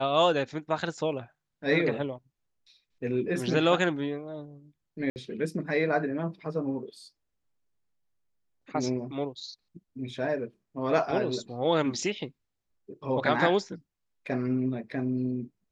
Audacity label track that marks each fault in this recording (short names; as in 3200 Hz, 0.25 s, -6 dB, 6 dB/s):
5.100000	5.160000	gap 59 ms